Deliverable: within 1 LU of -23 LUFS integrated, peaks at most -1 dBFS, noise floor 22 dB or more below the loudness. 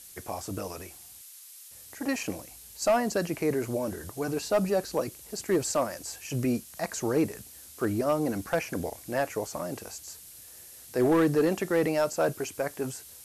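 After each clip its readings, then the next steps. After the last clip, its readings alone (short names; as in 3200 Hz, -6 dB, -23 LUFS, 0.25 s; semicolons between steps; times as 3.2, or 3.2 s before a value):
clipped 0.5%; flat tops at -17.5 dBFS; noise floor -49 dBFS; noise floor target -52 dBFS; loudness -29.5 LUFS; peak -17.5 dBFS; loudness target -23.0 LUFS
-> clip repair -17.5 dBFS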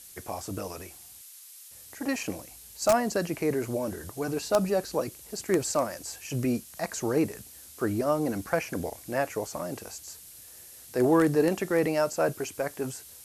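clipped 0.0%; noise floor -49 dBFS; noise floor target -51 dBFS
-> denoiser 6 dB, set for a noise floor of -49 dBFS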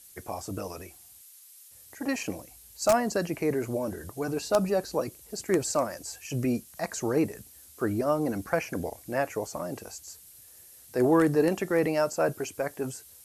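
noise floor -53 dBFS; loudness -29.0 LUFS; peak -8.5 dBFS; loudness target -23.0 LUFS
-> gain +6 dB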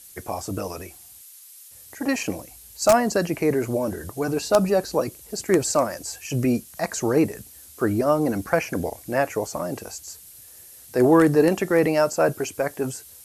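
loudness -23.0 LUFS; peak -2.5 dBFS; noise floor -47 dBFS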